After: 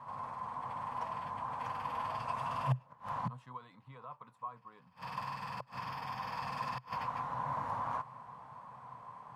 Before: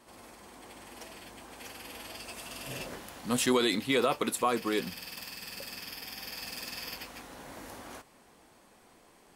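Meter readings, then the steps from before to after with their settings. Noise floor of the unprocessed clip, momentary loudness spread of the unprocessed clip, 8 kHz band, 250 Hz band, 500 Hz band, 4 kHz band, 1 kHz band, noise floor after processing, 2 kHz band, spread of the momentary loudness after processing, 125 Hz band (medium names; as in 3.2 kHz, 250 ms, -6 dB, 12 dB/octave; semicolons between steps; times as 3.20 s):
-60 dBFS, 21 LU, under -20 dB, -15.0 dB, -15.5 dB, -17.0 dB, +2.5 dB, -64 dBFS, -9.0 dB, 14 LU, +5.5 dB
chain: peaking EQ 410 Hz +10 dB 1.4 oct; inverted gate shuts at -26 dBFS, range -28 dB; two resonant band-passes 360 Hz, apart 3 oct; trim +18 dB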